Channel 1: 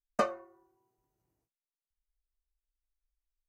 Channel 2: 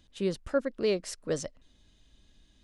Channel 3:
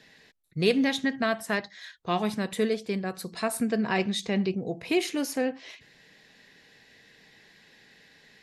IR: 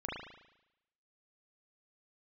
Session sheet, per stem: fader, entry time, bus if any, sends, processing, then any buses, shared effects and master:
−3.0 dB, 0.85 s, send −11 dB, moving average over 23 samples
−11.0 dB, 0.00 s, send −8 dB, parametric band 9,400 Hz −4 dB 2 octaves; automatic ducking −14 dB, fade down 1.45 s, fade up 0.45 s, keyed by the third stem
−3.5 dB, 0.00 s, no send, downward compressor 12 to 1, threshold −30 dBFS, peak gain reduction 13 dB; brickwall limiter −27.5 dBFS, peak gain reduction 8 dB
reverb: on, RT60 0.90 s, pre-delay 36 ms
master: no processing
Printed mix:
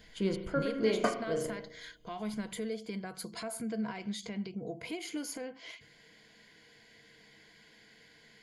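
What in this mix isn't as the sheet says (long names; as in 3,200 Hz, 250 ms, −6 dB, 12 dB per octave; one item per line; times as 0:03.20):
stem 1: missing moving average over 23 samples
stem 2 −11.0 dB → −0.5 dB
master: extra EQ curve with evenly spaced ripples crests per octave 1.8, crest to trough 10 dB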